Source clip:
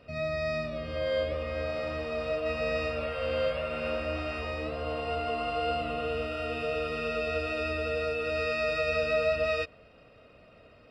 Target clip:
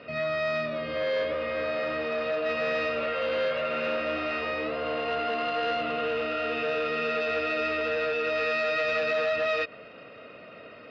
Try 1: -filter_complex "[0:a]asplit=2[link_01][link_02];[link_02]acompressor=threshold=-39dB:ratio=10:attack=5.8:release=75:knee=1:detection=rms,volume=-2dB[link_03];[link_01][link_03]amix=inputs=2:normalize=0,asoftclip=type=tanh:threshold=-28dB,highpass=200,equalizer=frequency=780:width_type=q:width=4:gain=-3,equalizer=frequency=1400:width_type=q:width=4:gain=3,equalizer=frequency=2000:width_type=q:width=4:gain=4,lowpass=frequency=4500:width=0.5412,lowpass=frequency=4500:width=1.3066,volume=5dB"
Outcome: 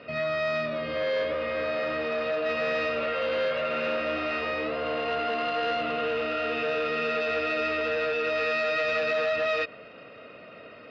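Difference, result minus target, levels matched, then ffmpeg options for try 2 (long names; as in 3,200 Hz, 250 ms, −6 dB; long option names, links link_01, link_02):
downward compressor: peak gain reduction −7 dB
-filter_complex "[0:a]asplit=2[link_01][link_02];[link_02]acompressor=threshold=-46.5dB:ratio=10:attack=5.8:release=75:knee=1:detection=rms,volume=-2dB[link_03];[link_01][link_03]amix=inputs=2:normalize=0,asoftclip=type=tanh:threshold=-28dB,highpass=200,equalizer=frequency=780:width_type=q:width=4:gain=-3,equalizer=frequency=1400:width_type=q:width=4:gain=3,equalizer=frequency=2000:width_type=q:width=4:gain=4,lowpass=frequency=4500:width=0.5412,lowpass=frequency=4500:width=1.3066,volume=5dB"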